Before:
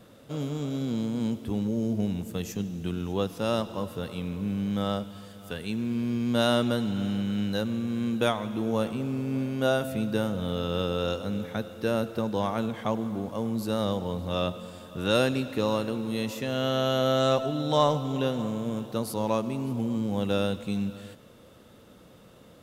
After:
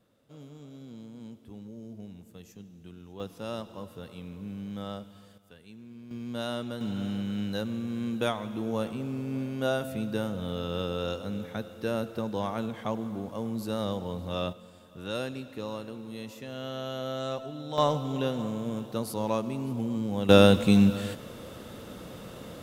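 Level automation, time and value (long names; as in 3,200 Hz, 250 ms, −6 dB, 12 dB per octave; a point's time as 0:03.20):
−16 dB
from 0:03.20 −9 dB
from 0:05.38 −18 dB
from 0:06.11 −10 dB
from 0:06.81 −3.5 dB
from 0:14.53 −10 dB
from 0:17.78 −2 dB
from 0:20.29 +10 dB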